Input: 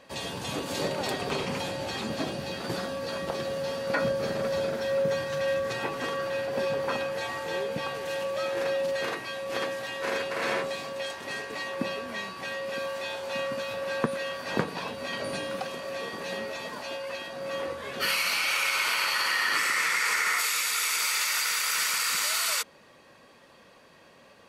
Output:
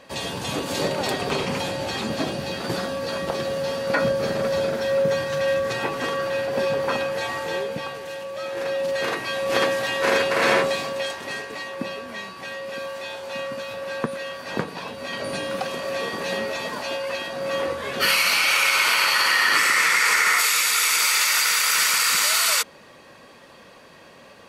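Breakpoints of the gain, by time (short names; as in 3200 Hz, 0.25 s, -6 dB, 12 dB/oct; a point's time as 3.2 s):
7.44 s +5.5 dB
8.24 s -2.5 dB
9.48 s +10 dB
10.63 s +10 dB
11.69 s +1 dB
14.83 s +1 dB
15.83 s +7.5 dB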